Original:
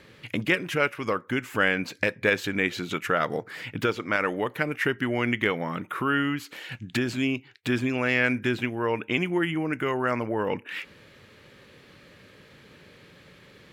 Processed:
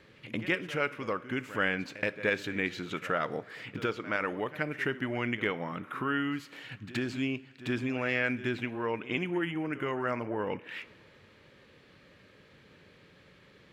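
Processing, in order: high shelf 8800 Hz -11 dB; reverse echo 74 ms -15.5 dB; on a send at -16.5 dB: reverb, pre-delay 3 ms; on the sum: gain -6 dB

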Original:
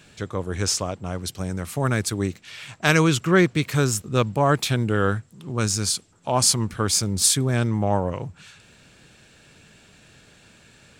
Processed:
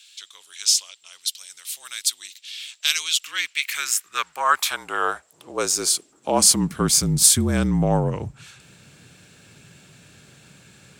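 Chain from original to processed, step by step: high-pass sweep 3500 Hz -> 180 Hz, 3.15–6.99; frequency shift -40 Hz; high shelf 8600 Hz +10 dB

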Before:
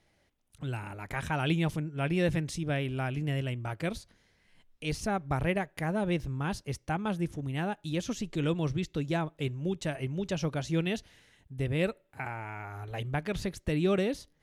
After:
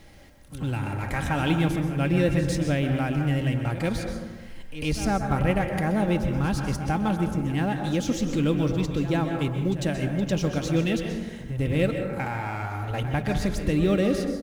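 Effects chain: G.711 law mismatch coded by mu; low shelf 290 Hz +6 dB; comb 3.7 ms, depth 31%; on a send: reverse echo 0.1 s -14 dB; on the sum: plate-style reverb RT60 1.1 s, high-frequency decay 0.35×, pre-delay 0.115 s, DRR 5 dB; in parallel at +1 dB: compressor, threshold -38 dBFS, peak gain reduction 18.5 dB

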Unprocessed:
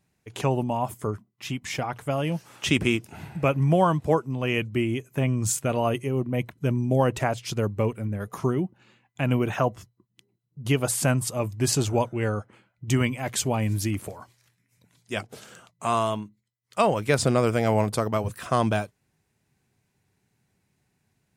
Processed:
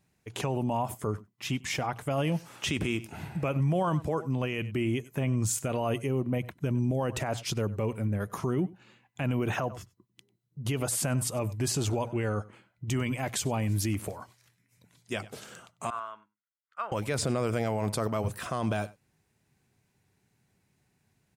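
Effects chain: 15.9–16.92 band-pass 1400 Hz, Q 6.1; echo 96 ms -23.5 dB; limiter -20 dBFS, peak gain reduction 11 dB

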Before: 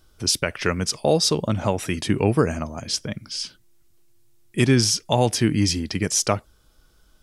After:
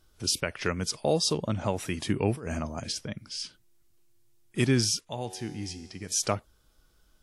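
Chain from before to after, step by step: 2.32–3.01 negative-ratio compressor -27 dBFS, ratio -1; 4.99–6.12 resonator 93 Hz, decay 1.8 s, harmonics all, mix 70%; gain -6.5 dB; WMA 64 kbps 44100 Hz

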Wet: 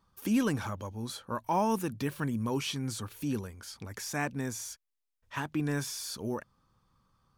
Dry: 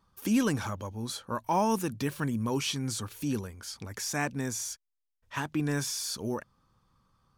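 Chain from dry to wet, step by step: dynamic EQ 6400 Hz, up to -4 dB, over -50 dBFS, Q 0.87; gain -1.5 dB

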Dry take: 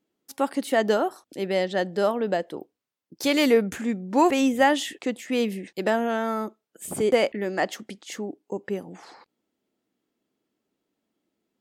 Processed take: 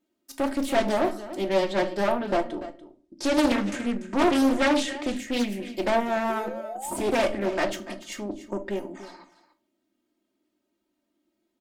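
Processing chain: comb 3.2 ms, depth 94%; tube stage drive 19 dB, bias 0.6; 2.44–5.01 LPF 9200 Hz 24 dB/oct; 6.29–6.97 painted sound rise 370–1000 Hz -37 dBFS; echo 0.29 s -14.5 dB; shoebox room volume 300 m³, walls furnished, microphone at 0.86 m; Doppler distortion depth 0.53 ms

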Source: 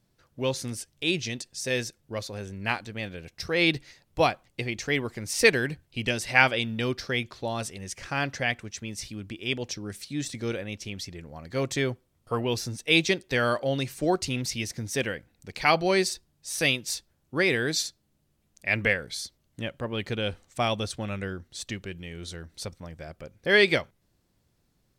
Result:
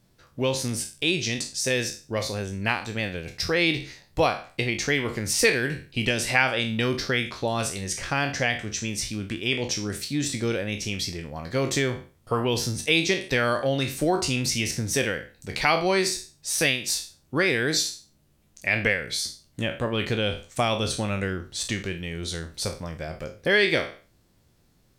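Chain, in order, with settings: spectral trails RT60 0.34 s; compressor 2:1, threshold -29 dBFS, peak gain reduction 9.5 dB; gain +6 dB

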